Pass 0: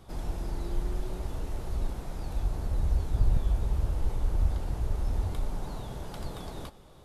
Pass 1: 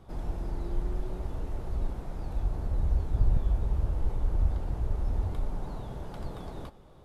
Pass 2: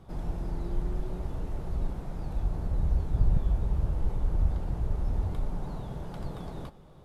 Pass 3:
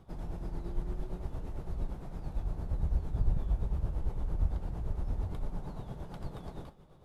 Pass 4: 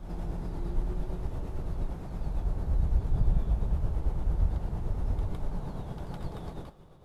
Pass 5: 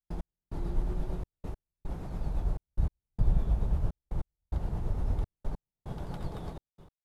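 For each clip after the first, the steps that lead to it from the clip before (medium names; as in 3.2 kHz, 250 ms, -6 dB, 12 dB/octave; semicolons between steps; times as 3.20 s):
treble shelf 2.6 kHz -10.5 dB
peaking EQ 160 Hz +6 dB 0.56 oct
tremolo 8.8 Hz, depth 55%; trim -2.5 dB
reverse echo 159 ms -5 dB; trim +3 dB
trance gate ".x...xxxxxxx." 146 bpm -60 dB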